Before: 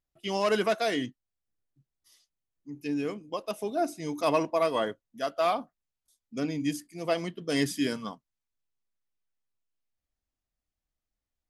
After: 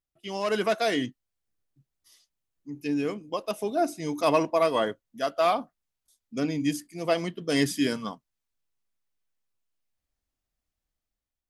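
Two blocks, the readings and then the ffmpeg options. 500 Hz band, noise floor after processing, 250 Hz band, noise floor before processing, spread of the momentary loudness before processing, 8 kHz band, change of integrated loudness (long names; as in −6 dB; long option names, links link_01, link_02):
+2.5 dB, below −85 dBFS, +3.0 dB, below −85 dBFS, 10 LU, +2.5 dB, +2.5 dB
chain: -af "dynaudnorm=framelen=170:gausssize=7:maxgain=7.5dB,volume=-4.5dB"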